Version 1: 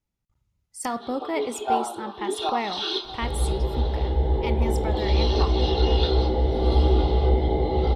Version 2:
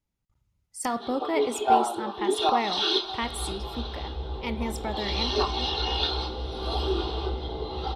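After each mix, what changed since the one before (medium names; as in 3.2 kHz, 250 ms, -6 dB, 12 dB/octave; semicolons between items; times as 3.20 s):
first sound +3.0 dB; second sound -12.0 dB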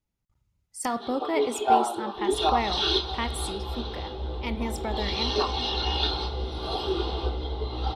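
second sound: entry -0.90 s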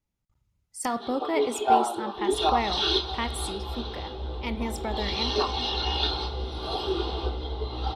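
second sound: send -11.5 dB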